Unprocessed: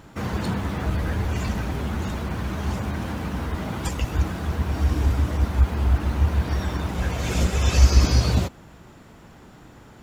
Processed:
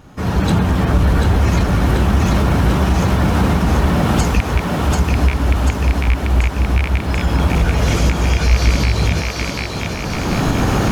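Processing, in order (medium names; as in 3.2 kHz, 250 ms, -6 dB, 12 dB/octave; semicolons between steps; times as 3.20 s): rattle on loud lows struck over -14 dBFS, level -8 dBFS; recorder AGC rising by 24 dB/s; bass shelf 330 Hz +3 dB; band-stop 2.2 kHz, Q 26; on a send: thinning echo 679 ms, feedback 63%, high-pass 230 Hz, level -3.5 dB; on the sum: speed mistake 48 kHz file played as 44.1 kHz; in parallel at +2 dB: peak limiter -8.5 dBFS, peak gain reduction 9.5 dB; on the sum: trim -6 dB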